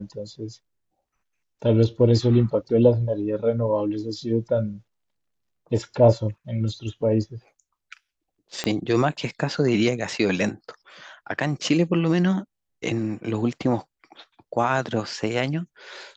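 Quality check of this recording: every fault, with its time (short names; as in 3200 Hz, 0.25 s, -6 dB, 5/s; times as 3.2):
8.64 pop -11 dBFS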